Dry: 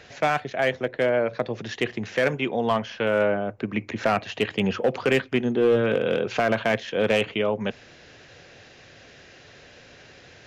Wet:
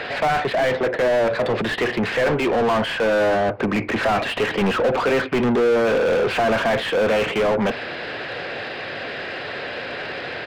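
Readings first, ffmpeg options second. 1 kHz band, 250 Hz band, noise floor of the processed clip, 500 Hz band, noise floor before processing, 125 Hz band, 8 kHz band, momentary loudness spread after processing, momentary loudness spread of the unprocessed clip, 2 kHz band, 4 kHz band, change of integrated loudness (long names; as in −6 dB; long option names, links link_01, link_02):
+6.0 dB, +3.5 dB, −31 dBFS, +4.5 dB, −50 dBFS, +2.5 dB, can't be measured, 10 LU, 7 LU, +5.5 dB, +5.5 dB, +3.5 dB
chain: -filter_complex "[0:a]aresample=11025,aresample=44100,asplit=2[link_01][link_02];[link_02]highpass=frequency=720:poles=1,volume=33dB,asoftclip=type=tanh:threshold=-11.5dB[link_03];[link_01][link_03]amix=inputs=2:normalize=0,lowpass=frequency=1300:poles=1,volume=-6dB"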